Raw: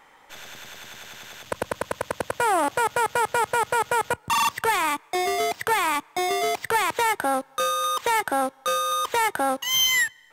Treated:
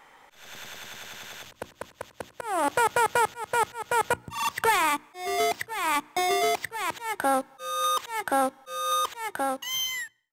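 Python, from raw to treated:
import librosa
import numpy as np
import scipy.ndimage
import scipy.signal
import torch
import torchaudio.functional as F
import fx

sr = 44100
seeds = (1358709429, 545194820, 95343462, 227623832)

y = fx.fade_out_tail(x, sr, length_s=1.38)
y = fx.auto_swell(y, sr, attack_ms=281.0)
y = fx.hum_notches(y, sr, base_hz=60, count=6)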